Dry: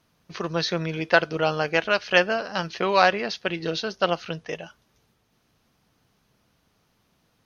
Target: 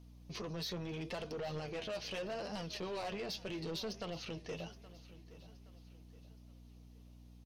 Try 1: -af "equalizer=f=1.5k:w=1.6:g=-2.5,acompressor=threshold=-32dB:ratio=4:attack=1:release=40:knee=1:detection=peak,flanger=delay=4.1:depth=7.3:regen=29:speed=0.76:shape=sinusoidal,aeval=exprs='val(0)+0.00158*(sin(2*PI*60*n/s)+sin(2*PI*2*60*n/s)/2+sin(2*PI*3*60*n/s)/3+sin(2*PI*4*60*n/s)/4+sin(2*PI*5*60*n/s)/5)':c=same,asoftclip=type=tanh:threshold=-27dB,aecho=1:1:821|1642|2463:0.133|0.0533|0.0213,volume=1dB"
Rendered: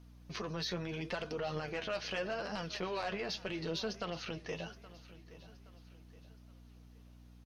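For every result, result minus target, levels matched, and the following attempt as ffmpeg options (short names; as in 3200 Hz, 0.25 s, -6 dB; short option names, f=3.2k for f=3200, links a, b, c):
soft clip: distortion -12 dB; 2000 Hz band +3.5 dB
-af "equalizer=f=1.5k:w=1.6:g=-2.5,acompressor=threshold=-32dB:ratio=4:attack=1:release=40:knee=1:detection=peak,flanger=delay=4.1:depth=7.3:regen=29:speed=0.76:shape=sinusoidal,aeval=exprs='val(0)+0.00158*(sin(2*PI*60*n/s)+sin(2*PI*2*60*n/s)/2+sin(2*PI*3*60*n/s)/3+sin(2*PI*4*60*n/s)/4+sin(2*PI*5*60*n/s)/5)':c=same,asoftclip=type=tanh:threshold=-37dB,aecho=1:1:821|1642|2463:0.133|0.0533|0.0213,volume=1dB"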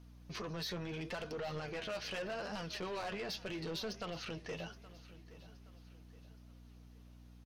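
2000 Hz band +3.5 dB
-af "equalizer=f=1.5k:w=1.6:g=-12.5,acompressor=threshold=-32dB:ratio=4:attack=1:release=40:knee=1:detection=peak,flanger=delay=4.1:depth=7.3:regen=29:speed=0.76:shape=sinusoidal,aeval=exprs='val(0)+0.00158*(sin(2*PI*60*n/s)+sin(2*PI*2*60*n/s)/2+sin(2*PI*3*60*n/s)/3+sin(2*PI*4*60*n/s)/4+sin(2*PI*5*60*n/s)/5)':c=same,asoftclip=type=tanh:threshold=-37dB,aecho=1:1:821|1642|2463:0.133|0.0533|0.0213,volume=1dB"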